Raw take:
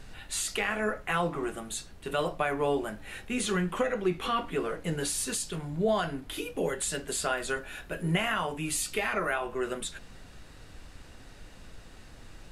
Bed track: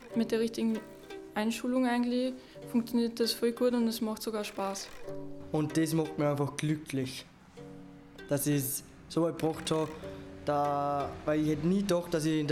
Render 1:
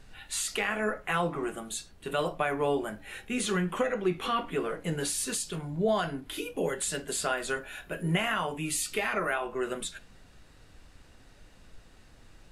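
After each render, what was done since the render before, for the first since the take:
noise reduction from a noise print 6 dB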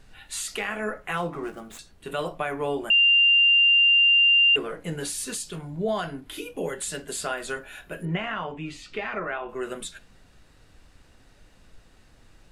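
0:01.17–0:01.79: running median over 9 samples
0:02.90–0:04.56: beep over 2,790 Hz −14.5 dBFS
0:08.05–0:09.49: high-frequency loss of the air 190 metres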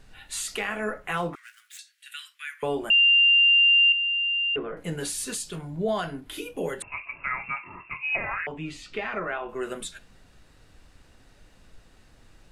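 0:01.35–0:02.63: Butterworth high-pass 1,600 Hz 48 dB per octave
0:03.92–0:04.77: high-frequency loss of the air 490 metres
0:06.82–0:08.47: voice inversion scrambler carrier 2,700 Hz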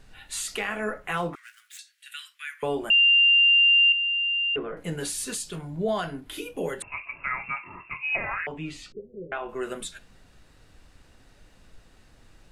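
0:08.92–0:09.32: Chebyshev low-pass with heavy ripple 540 Hz, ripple 9 dB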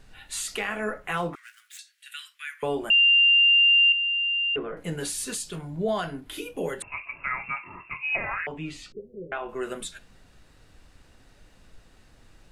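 0:03.37–0:03.77: Butterworth band-reject 1,300 Hz, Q 2.6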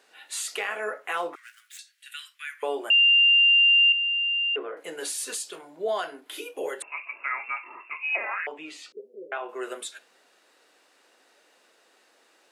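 high-pass filter 370 Hz 24 dB per octave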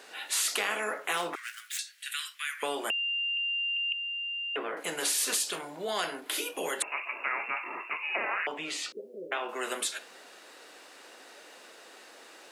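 every bin compressed towards the loudest bin 2 to 1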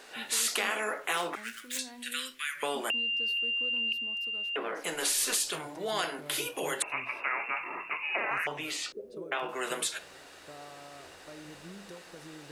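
mix in bed track −19.5 dB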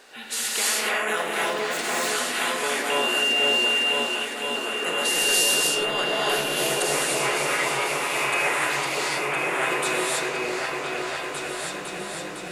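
on a send: echo whose low-pass opens from repeat to repeat 506 ms, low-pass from 750 Hz, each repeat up 2 octaves, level 0 dB
on the sum: reverb whose tail is shaped and stops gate 340 ms rising, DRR −5.5 dB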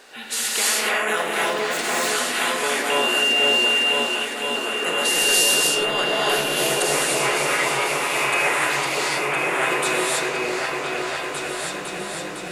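level +3 dB

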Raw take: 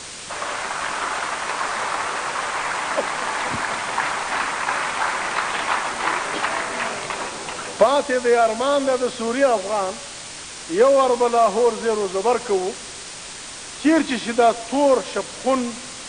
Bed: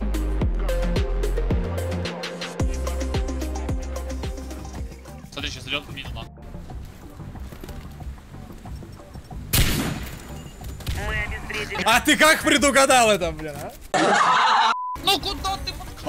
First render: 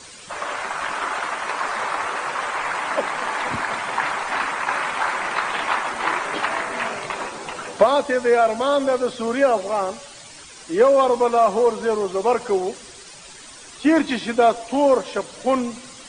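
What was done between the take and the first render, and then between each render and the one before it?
broadband denoise 11 dB, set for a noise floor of −35 dBFS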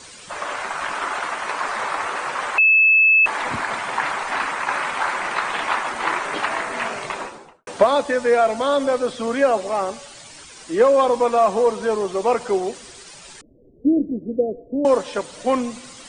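0:02.58–0:03.26: beep over 2,610 Hz −10.5 dBFS
0:07.10–0:07.67: fade out and dull
0:13.41–0:14.85: Butterworth low-pass 530 Hz 48 dB per octave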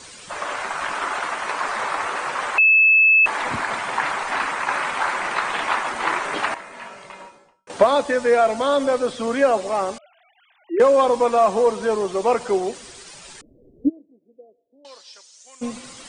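0:06.54–0:07.70: tuned comb filter 190 Hz, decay 0.4 s, harmonics odd, mix 80%
0:09.98–0:10.80: three sine waves on the formant tracks
0:13.88–0:15.61: resonant band-pass 1,800 Hz → 7,600 Hz, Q 3.7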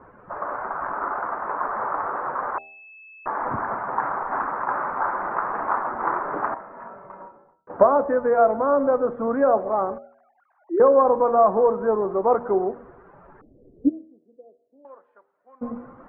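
Butterworth low-pass 1,400 Hz 36 dB per octave
hum removal 79.59 Hz, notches 10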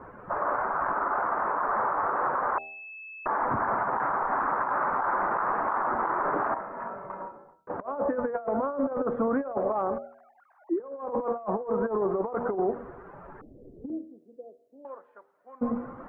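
compressor whose output falls as the input rises −24 dBFS, ratio −0.5
brickwall limiter −18.5 dBFS, peak gain reduction 9 dB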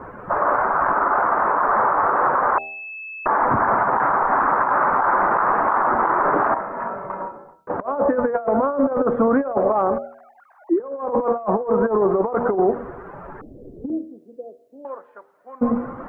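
level +9 dB

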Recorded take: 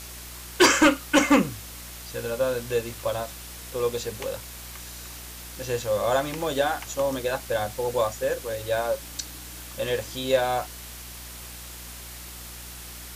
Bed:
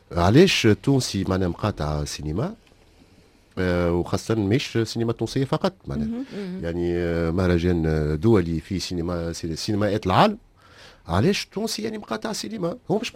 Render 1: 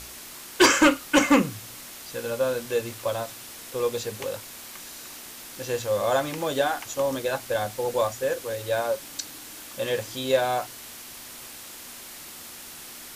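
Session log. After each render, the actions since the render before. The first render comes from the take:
hum removal 60 Hz, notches 3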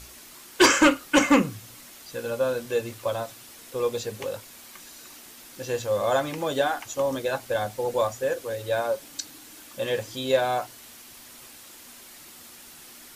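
broadband denoise 6 dB, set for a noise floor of −42 dBFS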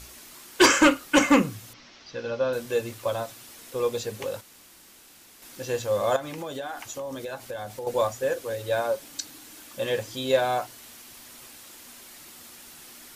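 0:01.73–0:02.53: elliptic low-pass filter 5,700 Hz, stop band 50 dB
0:04.41–0:05.42: fill with room tone
0:06.16–0:07.87: downward compressor 4 to 1, threshold −32 dBFS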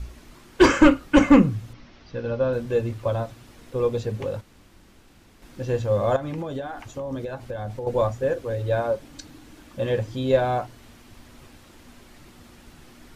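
RIAA equalisation playback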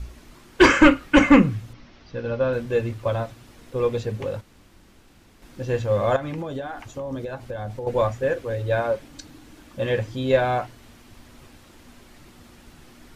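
dynamic equaliser 2,100 Hz, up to +7 dB, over −41 dBFS, Q 1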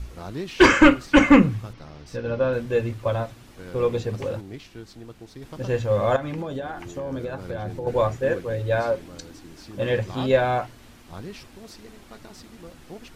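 mix in bed −18 dB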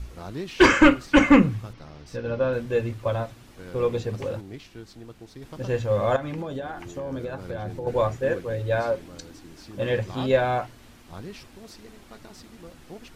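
level −1.5 dB

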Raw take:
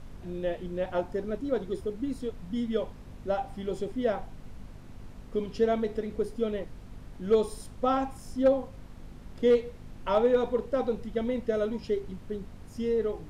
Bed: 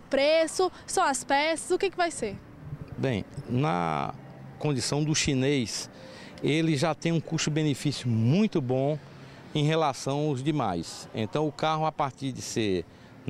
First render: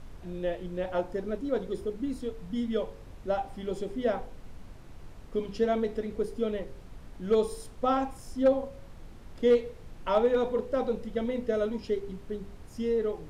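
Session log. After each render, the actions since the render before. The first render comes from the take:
hum removal 50 Hz, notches 11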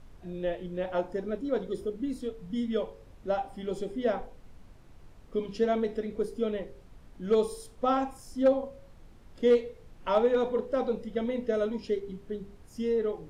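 noise reduction from a noise print 6 dB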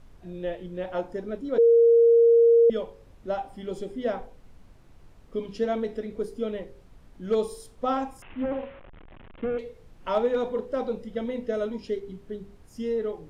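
0:01.58–0:02.70: beep over 465 Hz −13.5 dBFS
0:08.22–0:09.59: linear delta modulator 16 kbit/s, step −41 dBFS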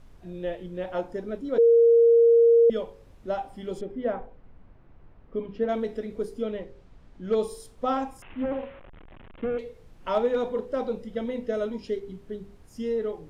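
0:03.81–0:05.69: low-pass filter 2,000 Hz
0:06.42–0:07.41: high-frequency loss of the air 67 metres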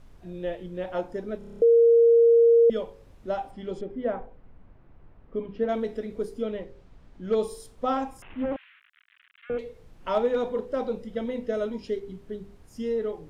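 0:01.38: stutter in place 0.03 s, 8 plays
0:03.51–0:05.59: high-frequency loss of the air 73 metres
0:08.56–0:09.50: Butterworth high-pass 1,500 Hz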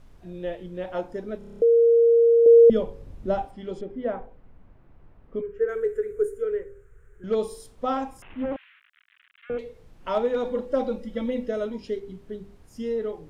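0:02.46–0:03.45: low-shelf EQ 420 Hz +11.5 dB
0:05.41–0:07.24: drawn EQ curve 110 Hz 0 dB, 160 Hz −10 dB, 270 Hz −29 dB, 410 Hz +10 dB, 650 Hz −18 dB, 980 Hz −13 dB, 1,500 Hz +7 dB, 3,000 Hz −14 dB, 4,700 Hz −25 dB, 7,100 Hz +4 dB
0:10.44–0:11.49: comb filter 3.6 ms, depth 82%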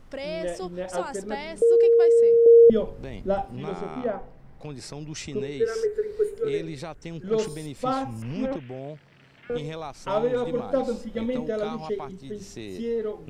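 mix in bed −10.5 dB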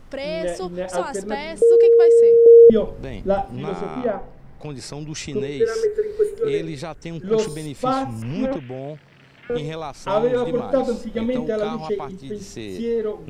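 level +5 dB

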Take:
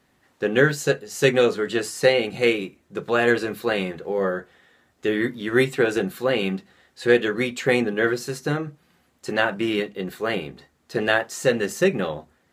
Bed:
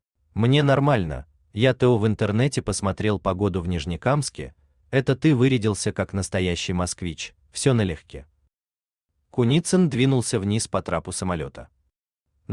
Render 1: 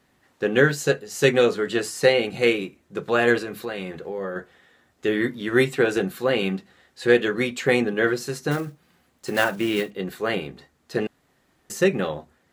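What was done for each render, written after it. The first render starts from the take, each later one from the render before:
0:03.38–0:04.36: downward compressor 2.5 to 1, threshold −29 dBFS
0:08.51–0:09.92: one scale factor per block 5 bits
0:11.07–0:11.70: fill with room tone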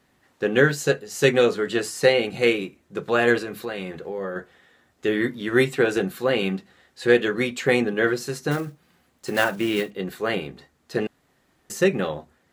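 no processing that can be heard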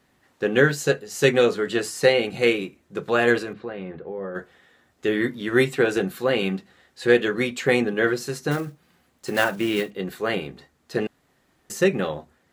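0:03.53–0:04.35: head-to-tape spacing loss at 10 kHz 37 dB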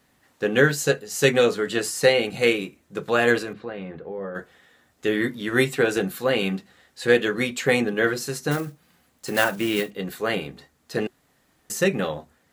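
high-shelf EQ 6,200 Hz +6.5 dB
notch filter 370 Hz, Q 12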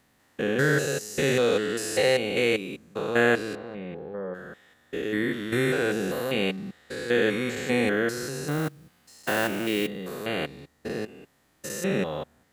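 spectrum averaged block by block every 200 ms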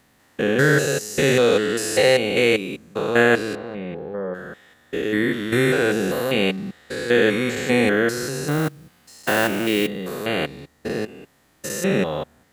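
level +6 dB
brickwall limiter −3 dBFS, peak gain reduction 2 dB

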